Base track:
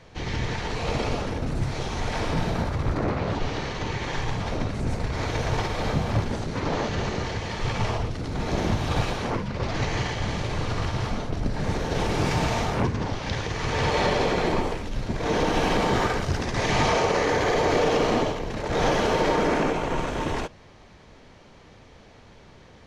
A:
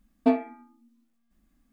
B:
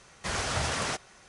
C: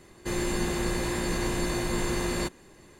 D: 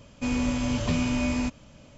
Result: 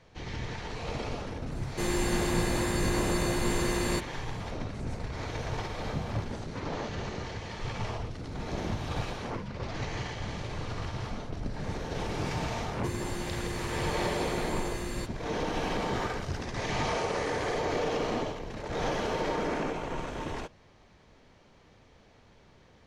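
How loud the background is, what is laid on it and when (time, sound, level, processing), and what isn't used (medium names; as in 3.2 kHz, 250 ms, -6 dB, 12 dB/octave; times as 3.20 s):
base track -8.5 dB
1.52 s: add C -0.5 dB
12.58 s: add C -8 dB + short-mantissa float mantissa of 8-bit
16.62 s: add B -17 dB
not used: A, D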